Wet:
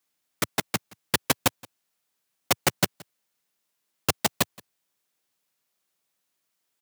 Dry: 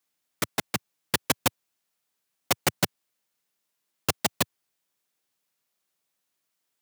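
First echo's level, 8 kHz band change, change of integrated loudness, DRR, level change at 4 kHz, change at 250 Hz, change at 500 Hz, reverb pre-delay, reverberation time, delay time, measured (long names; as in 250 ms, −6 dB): −24.0 dB, +1.5 dB, +1.5 dB, no reverb audible, +1.5 dB, +1.5 dB, +1.5 dB, no reverb audible, no reverb audible, 173 ms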